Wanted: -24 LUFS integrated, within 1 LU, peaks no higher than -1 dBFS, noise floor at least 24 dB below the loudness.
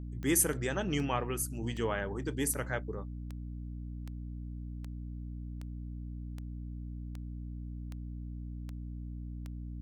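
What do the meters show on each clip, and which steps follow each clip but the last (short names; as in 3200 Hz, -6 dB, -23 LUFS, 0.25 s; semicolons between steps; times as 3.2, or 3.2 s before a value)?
clicks 13; hum 60 Hz; harmonics up to 300 Hz; hum level -38 dBFS; loudness -37.0 LUFS; peak -14.0 dBFS; loudness target -24.0 LUFS
-> de-click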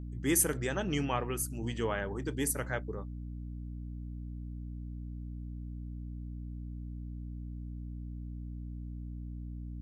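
clicks 0; hum 60 Hz; harmonics up to 300 Hz; hum level -38 dBFS
-> notches 60/120/180/240/300 Hz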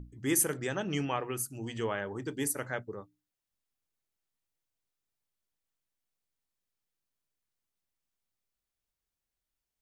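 hum none; loudness -32.5 LUFS; peak -14.5 dBFS; loudness target -24.0 LUFS
-> gain +8.5 dB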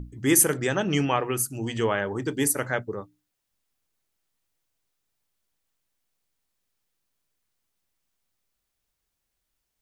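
loudness -24.0 LUFS; peak -6.0 dBFS; noise floor -80 dBFS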